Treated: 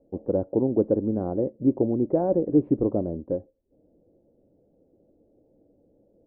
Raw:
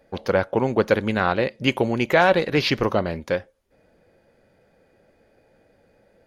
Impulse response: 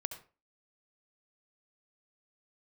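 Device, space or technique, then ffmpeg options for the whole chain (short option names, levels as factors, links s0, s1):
under water: -af "lowpass=f=600:w=0.5412,lowpass=f=600:w=1.3066,equalizer=f=300:t=o:w=0.47:g=10,volume=0.631"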